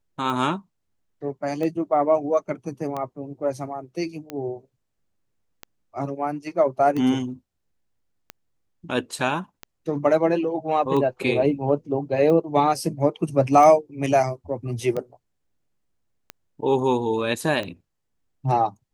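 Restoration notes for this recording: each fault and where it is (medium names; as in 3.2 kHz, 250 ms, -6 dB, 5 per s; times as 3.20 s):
tick 45 rpm -17 dBFS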